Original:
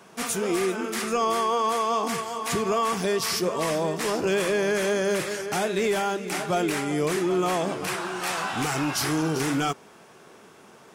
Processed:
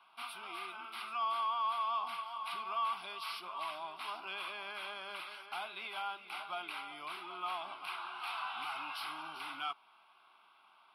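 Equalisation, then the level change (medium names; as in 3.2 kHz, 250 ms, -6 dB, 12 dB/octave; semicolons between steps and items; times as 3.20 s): boxcar filter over 6 samples; high-pass 1 kHz 12 dB/octave; static phaser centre 1.8 kHz, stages 6; -5.5 dB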